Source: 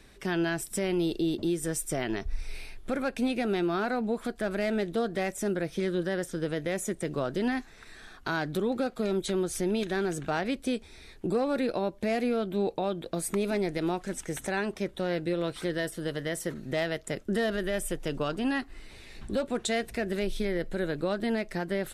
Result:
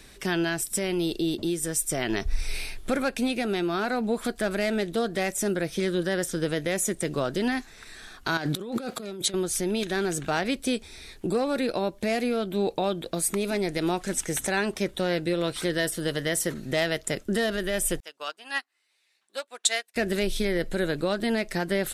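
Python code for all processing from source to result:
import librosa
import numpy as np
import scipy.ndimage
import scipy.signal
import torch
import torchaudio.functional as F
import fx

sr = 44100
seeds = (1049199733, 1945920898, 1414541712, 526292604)

y = fx.chain(x, sr, fx.highpass(hz=110.0, slope=12),
    fx.transient(attack_db=5, sustain_db=-3),
    fx.over_compress(threshold_db=-38.0, ratio=-1.0), at=(8.37, 9.34))
y = fx.chain(y, sr, fx.highpass(hz=800.0, slope=12),
    fx.upward_expand(threshold_db=-49.0, expansion=2.5), at=(18.0, 19.96))
y = fx.high_shelf(y, sr, hz=2900.0, db=8.0)
y = fx.rider(y, sr, range_db=4, speed_s=0.5)
y = y * 10.0 ** (2.5 / 20.0)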